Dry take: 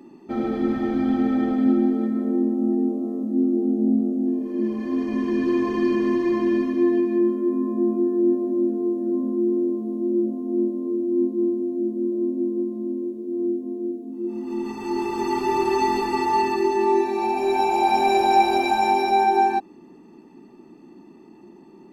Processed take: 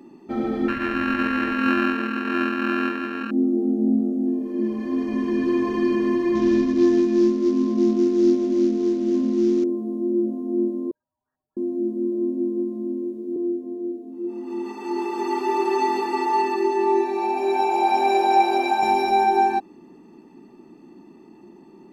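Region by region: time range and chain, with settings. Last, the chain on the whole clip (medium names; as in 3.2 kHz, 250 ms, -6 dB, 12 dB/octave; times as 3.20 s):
0.68–3.31 s: sorted samples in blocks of 32 samples + FFT filter 100 Hz 0 dB, 200 Hz -6 dB, 330 Hz 0 dB, 980 Hz -8 dB, 1.8 kHz +9 dB, 7.6 kHz -28 dB
6.35–9.64 s: CVSD coder 32 kbps + bass shelf 170 Hz +11 dB
10.91–11.57 s: brick-wall FIR high-pass 1.5 kHz + frequency inversion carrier 3.4 kHz
13.36–18.83 s: high-pass 270 Hz 24 dB/octave + treble shelf 3.9 kHz -5 dB
whole clip: none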